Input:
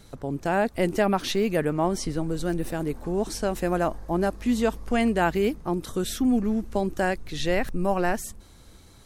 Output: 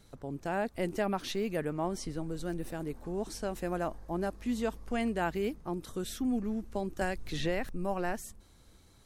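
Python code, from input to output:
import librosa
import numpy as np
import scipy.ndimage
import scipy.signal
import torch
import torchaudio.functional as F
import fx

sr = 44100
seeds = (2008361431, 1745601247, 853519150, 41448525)

y = fx.band_squash(x, sr, depth_pct=100, at=(7.01, 7.67))
y = y * 10.0 ** (-9.0 / 20.0)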